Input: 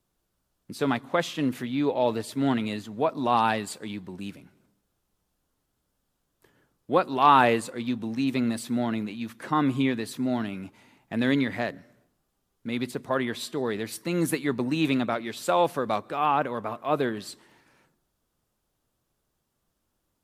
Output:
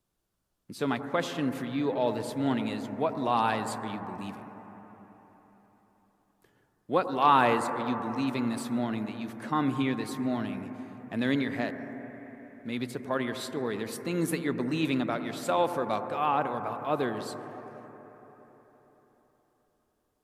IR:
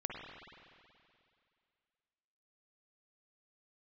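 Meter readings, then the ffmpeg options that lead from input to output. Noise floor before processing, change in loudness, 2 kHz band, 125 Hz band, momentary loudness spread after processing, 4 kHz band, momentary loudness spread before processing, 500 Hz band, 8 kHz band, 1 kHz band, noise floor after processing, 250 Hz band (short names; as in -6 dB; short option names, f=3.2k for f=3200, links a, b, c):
-78 dBFS, -3.5 dB, -3.5 dB, -3.0 dB, 15 LU, -4.0 dB, 12 LU, -3.0 dB, -3.5 dB, -3.0 dB, -75 dBFS, -3.0 dB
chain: -filter_complex "[0:a]asplit=2[a][b];[1:a]atrim=start_sample=2205,asetrate=25578,aresample=44100[c];[b][c]afir=irnorm=-1:irlink=0,volume=-7dB[d];[a][d]amix=inputs=2:normalize=0,volume=-7dB"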